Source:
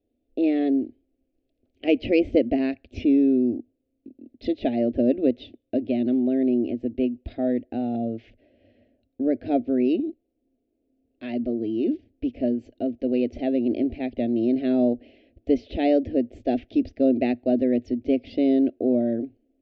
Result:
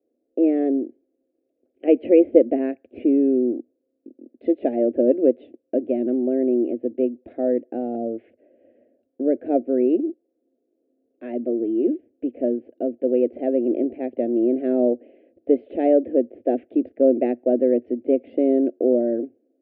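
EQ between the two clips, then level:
loudspeaker in its box 320–2,600 Hz, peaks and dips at 350 Hz +5 dB, 510 Hz +7 dB, 1,600 Hz +4 dB
tilt shelving filter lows +7.5 dB, about 1,400 Hz
−4.0 dB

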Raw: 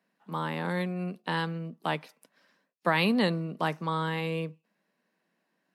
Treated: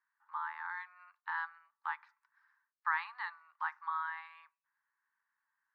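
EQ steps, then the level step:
Chebyshev high-pass with heavy ripple 850 Hz, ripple 3 dB
high-frequency loss of the air 140 metres
high shelf with overshoot 2,200 Hz −9 dB, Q 3
−5.0 dB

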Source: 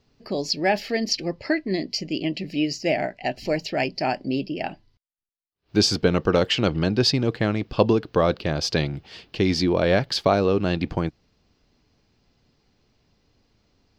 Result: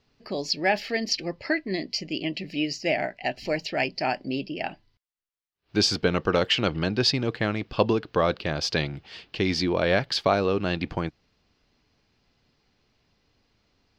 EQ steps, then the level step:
tilt shelving filter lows −5 dB, about 1,100 Hz
high-shelf EQ 4,700 Hz −12 dB
0.0 dB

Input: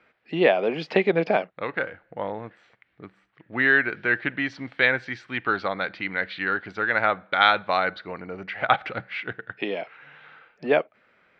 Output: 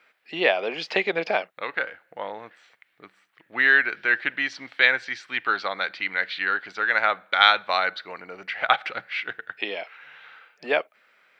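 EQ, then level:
high-pass filter 850 Hz 6 dB per octave
high-shelf EQ 4,800 Hz +11.5 dB
+1.5 dB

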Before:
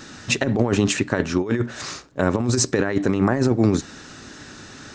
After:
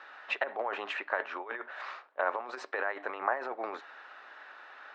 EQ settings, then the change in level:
high-pass filter 690 Hz 24 dB per octave
high-frequency loss of the air 490 metres
high-shelf EQ 4,800 Hz −11 dB
0.0 dB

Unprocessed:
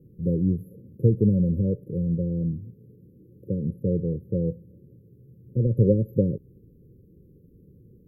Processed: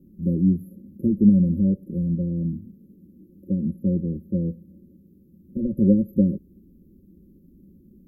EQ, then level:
parametric band 200 Hz +6 dB 0.44 octaves
phaser with its sweep stopped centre 460 Hz, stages 6
+4.0 dB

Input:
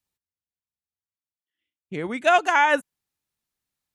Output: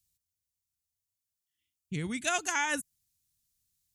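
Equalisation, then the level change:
dynamic equaliser 3,200 Hz, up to −6 dB, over −35 dBFS, Q 1.1
drawn EQ curve 110 Hz 0 dB, 600 Hz −25 dB, 1,300 Hz −19 dB, 6,600 Hz +1 dB
+7.5 dB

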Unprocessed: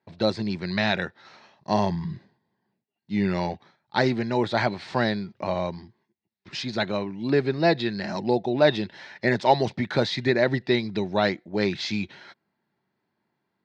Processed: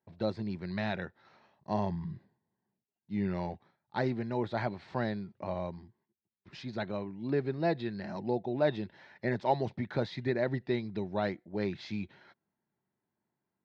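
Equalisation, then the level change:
spectral tilt −4 dB per octave
low-shelf EQ 410 Hz −11 dB
−8.5 dB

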